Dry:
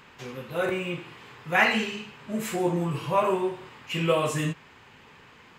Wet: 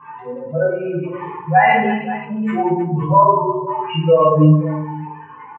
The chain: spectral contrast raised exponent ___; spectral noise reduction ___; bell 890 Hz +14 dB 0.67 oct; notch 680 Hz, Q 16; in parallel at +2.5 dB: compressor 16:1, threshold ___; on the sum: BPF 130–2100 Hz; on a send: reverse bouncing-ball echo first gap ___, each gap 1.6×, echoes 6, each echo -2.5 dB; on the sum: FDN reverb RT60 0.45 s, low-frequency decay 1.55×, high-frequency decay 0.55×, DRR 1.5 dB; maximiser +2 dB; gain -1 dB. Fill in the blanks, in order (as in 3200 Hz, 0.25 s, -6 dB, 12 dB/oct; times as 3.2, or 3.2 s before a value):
2.9, 12 dB, -33 dBFS, 20 ms